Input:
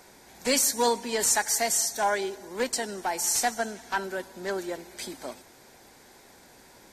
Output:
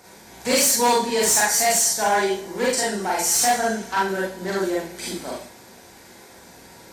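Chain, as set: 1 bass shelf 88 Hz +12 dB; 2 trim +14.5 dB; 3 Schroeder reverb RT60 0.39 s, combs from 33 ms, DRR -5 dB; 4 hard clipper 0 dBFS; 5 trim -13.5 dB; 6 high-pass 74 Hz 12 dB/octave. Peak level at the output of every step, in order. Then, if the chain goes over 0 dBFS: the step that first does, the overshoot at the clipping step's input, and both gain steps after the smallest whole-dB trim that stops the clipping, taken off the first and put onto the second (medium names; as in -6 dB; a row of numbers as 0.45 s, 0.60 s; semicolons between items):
-10.5 dBFS, +4.0 dBFS, +9.5 dBFS, 0.0 dBFS, -13.5 dBFS, -11.0 dBFS; step 2, 9.5 dB; step 2 +4.5 dB, step 5 -3.5 dB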